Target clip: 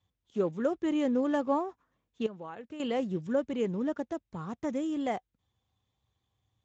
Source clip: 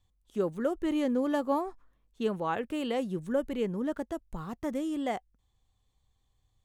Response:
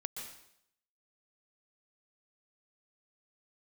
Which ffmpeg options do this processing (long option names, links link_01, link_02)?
-filter_complex "[0:a]asettb=1/sr,asplit=3[link_01][link_02][link_03];[link_01]atrim=end=2.264[link_04];[link_02]atrim=start=2.26:end=2.8,asetpts=PTS-STARTPTS,afade=type=in:duration=0.004:curve=qsin,afade=type=out:start_time=0.536:duration=0.004:curve=qsin,acompressor=threshold=-42dB:ratio=4[link_05];[link_03]atrim=start=2.796[link_06];[link_04][link_05]acrossfade=duration=0.004:curve1=hsin:curve2=qsin[link_07];[link_07][link_06]acrossfade=duration=0.004:curve1=qsin:curve2=hsin" -ar 16000 -c:a libspeex -b:a 17k